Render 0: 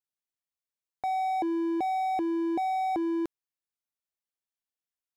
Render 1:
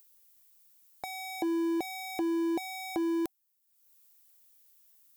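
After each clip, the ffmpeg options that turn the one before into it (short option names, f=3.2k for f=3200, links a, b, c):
-af "aemphasis=mode=production:type=75fm,bandreject=f=760:w=17,acompressor=mode=upward:threshold=-49dB:ratio=2.5"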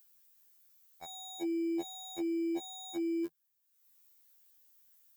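-af "equalizer=f=160:t=o:w=0.33:g=5,equalizer=f=1.6k:t=o:w=0.33:g=4,equalizer=f=10k:t=o:w=0.33:g=-5,alimiter=level_in=2.5dB:limit=-24dB:level=0:latency=1,volume=-2.5dB,afftfilt=real='re*2*eq(mod(b,4),0)':imag='im*2*eq(mod(b,4),0)':win_size=2048:overlap=0.75"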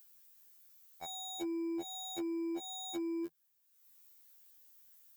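-af "acompressor=threshold=-37dB:ratio=6,asoftclip=type=tanh:threshold=-34dB,volume=3dB"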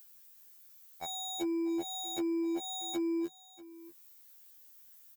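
-af "aecho=1:1:640:0.119,volume=4.5dB"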